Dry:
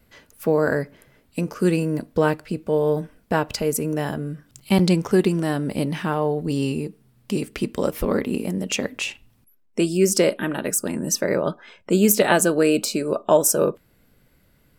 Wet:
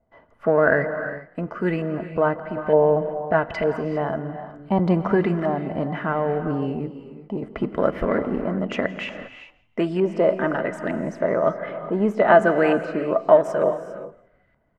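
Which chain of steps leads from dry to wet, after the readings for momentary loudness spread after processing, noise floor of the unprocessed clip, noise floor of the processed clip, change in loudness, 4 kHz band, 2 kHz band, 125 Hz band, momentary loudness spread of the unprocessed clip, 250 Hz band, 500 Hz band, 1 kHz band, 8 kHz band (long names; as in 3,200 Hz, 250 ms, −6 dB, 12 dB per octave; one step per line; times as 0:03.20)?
15 LU, −60 dBFS, −61 dBFS, −0.5 dB, −11.5 dB, +2.0 dB, −2.5 dB, 11 LU, −2.5 dB, +1.5 dB, +3.5 dB, below −25 dB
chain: noise gate −56 dBFS, range −8 dB
high-shelf EQ 5,100 Hz +7 dB
sample-and-hold tremolo 3.5 Hz
hollow resonant body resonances 660/2,000/3,000 Hz, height 12 dB, ringing for 45 ms
in parallel at −8.5 dB: hard clipping −25.5 dBFS, distortion −4 dB
on the sum: auto-filter low-pass saw up 1.1 Hz 840–1,900 Hz
on a send: echo with shifted repeats 168 ms, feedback 31%, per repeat +33 Hz, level −21 dB
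on the sum: reverb whose tail is shaped and stops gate 430 ms rising, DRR 10 dB
level −1.5 dB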